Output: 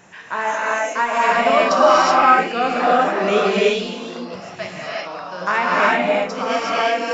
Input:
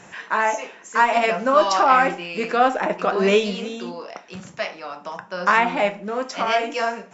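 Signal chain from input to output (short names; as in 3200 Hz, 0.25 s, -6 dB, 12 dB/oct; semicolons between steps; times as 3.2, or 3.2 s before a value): downsampling 16000 Hz; non-linear reverb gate 0.4 s rising, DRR -5.5 dB; gain -3.5 dB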